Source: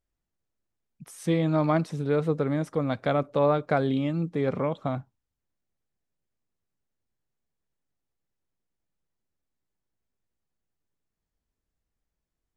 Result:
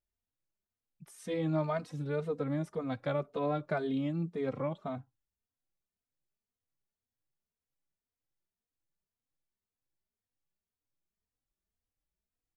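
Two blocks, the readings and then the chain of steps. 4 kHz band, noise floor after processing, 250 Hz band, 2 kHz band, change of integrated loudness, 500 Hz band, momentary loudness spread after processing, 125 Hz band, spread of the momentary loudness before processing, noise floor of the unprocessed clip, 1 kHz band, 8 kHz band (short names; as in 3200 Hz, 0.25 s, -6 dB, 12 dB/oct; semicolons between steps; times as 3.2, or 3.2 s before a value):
-8.5 dB, under -85 dBFS, -8.0 dB, -8.0 dB, -8.0 dB, -8.5 dB, 6 LU, -8.5 dB, 6 LU, -85 dBFS, -9.5 dB, n/a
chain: endless flanger 3 ms +1.9 Hz; gain -5.5 dB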